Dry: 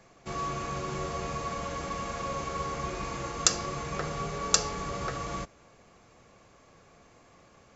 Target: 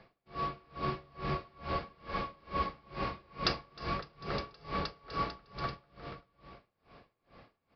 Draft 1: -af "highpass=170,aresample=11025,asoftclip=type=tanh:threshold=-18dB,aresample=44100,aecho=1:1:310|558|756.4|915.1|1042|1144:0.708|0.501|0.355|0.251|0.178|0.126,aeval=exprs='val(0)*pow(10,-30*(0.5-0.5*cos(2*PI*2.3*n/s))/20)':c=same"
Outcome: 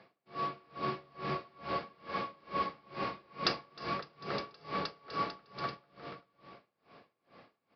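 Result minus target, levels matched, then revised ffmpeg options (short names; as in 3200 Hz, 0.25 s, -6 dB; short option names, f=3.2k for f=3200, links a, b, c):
125 Hz band -5.0 dB
-af "aresample=11025,asoftclip=type=tanh:threshold=-18dB,aresample=44100,aecho=1:1:310|558|756.4|915.1|1042|1144:0.708|0.501|0.355|0.251|0.178|0.126,aeval=exprs='val(0)*pow(10,-30*(0.5-0.5*cos(2*PI*2.3*n/s))/20)':c=same"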